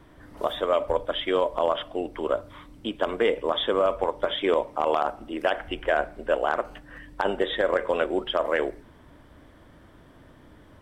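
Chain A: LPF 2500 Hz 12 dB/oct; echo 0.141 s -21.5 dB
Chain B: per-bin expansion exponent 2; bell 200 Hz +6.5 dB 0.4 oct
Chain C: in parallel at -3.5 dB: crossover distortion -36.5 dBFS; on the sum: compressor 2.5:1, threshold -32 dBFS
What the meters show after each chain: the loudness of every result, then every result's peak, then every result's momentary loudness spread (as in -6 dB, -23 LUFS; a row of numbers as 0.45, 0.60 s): -27.0, -31.5, -33.0 LUFS; -10.0, -13.5, -13.5 dBFS; 8, 9, 14 LU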